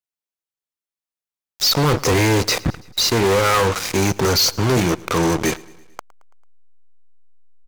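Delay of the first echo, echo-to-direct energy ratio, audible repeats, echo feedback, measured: 111 ms, −21.5 dB, 3, 58%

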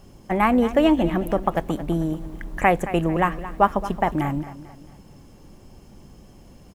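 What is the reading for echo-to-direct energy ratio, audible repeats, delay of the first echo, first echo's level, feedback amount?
−13.5 dB, 3, 222 ms, −14.5 dB, 41%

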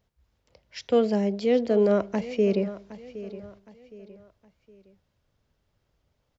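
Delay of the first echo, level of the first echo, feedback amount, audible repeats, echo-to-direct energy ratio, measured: 765 ms, −15.5 dB, 38%, 3, −15.0 dB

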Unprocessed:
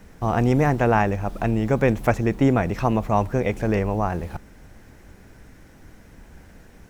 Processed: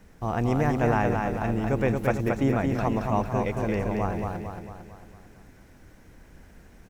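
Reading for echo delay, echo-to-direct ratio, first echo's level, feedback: 225 ms, −2.5 dB, −4.0 dB, 52%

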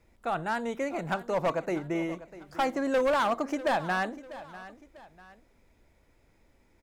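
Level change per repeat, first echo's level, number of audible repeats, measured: −8.0 dB, −16.5 dB, 2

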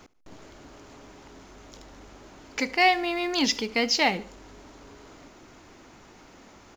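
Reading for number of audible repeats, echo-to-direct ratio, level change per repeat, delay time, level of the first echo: 2, −19.5 dB, −6.0 dB, 72 ms, −20.5 dB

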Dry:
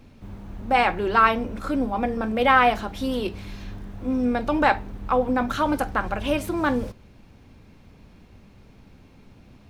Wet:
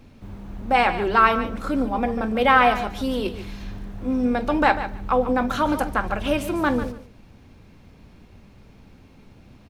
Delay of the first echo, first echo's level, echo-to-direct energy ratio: 145 ms, −12.0 dB, −12.0 dB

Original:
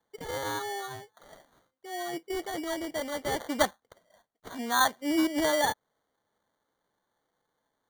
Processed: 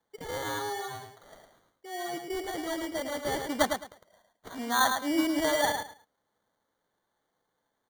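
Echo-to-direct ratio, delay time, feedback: −6.0 dB, 107 ms, 21%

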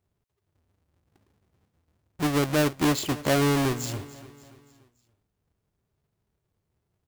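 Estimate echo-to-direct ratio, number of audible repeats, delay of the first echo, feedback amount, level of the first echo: −17.0 dB, 3, 288 ms, 49%, −18.0 dB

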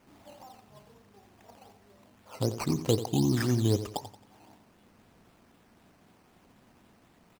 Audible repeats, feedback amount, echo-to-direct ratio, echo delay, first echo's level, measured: 3, 35%, −11.5 dB, 89 ms, −12.0 dB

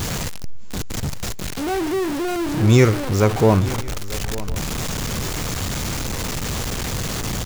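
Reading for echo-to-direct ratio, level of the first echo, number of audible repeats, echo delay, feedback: −15.5 dB, −16.5 dB, 2, 897 ms, repeats not evenly spaced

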